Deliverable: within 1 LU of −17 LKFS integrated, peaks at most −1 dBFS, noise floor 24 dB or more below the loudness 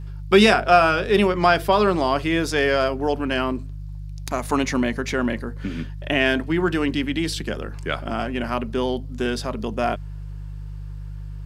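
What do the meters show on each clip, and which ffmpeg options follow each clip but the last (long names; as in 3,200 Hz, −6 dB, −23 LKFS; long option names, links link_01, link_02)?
mains hum 50 Hz; hum harmonics up to 150 Hz; level of the hum −30 dBFS; integrated loudness −21.5 LKFS; sample peak −1.5 dBFS; target loudness −17.0 LKFS
→ -af "bandreject=frequency=50:width_type=h:width=4,bandreject=frequency=100:width_type=h:width=4,bandreject=frequency=150:width_type=h:width=4"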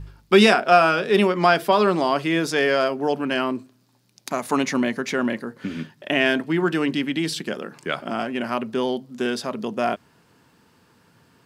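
mains hum none found; integrated loudness −21.5 LKFS; sample peak −1.0 dBFS; target loudness −17.0 LKFS
→ -af "volume=4.5dB,alimiter=limit=-1dB:level=0:latency=1"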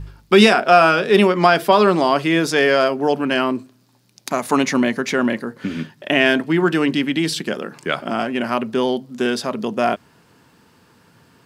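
integrated loudness −17.5 LKFS; sample peak −1.0 dBFS; background noise floor −55 dBFS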